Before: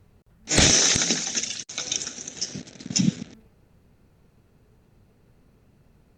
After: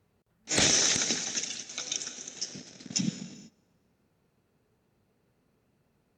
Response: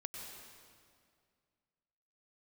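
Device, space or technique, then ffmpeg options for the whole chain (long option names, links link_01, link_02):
keyed gated reverb: -filter_complex "[0:a]highpass=frequency=210:poles=1,asplit=3[link_01][link_02][link_03];[1:a]atrim=start_sample=2205[link_04];[link_02][link_04]afir=irnorm=-1:irlink=0[link_05];[link_03]apad=whole_len=272214[link_06];[link_05][link_06]sidechaingate=range=-18dB:threshold=-56dB:ratio=16:detection=peak,volume=-4.5dB[link_07];[link_01][link_07]amix=inputs=2:normalize=0,volume=-8.5dB"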